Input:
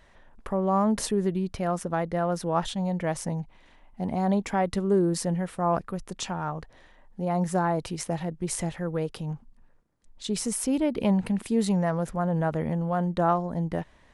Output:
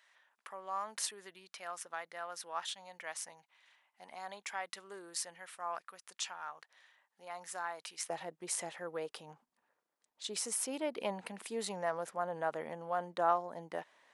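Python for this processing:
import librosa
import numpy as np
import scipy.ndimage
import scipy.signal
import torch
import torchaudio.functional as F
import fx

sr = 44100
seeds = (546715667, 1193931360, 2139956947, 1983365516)

y = fx.highpass(x, sr, hz=fx.steps((0.0, 1400.0), (8.1, 580.0)), slope=12)
y = y * librosa.db_to_amplitude(-4.5)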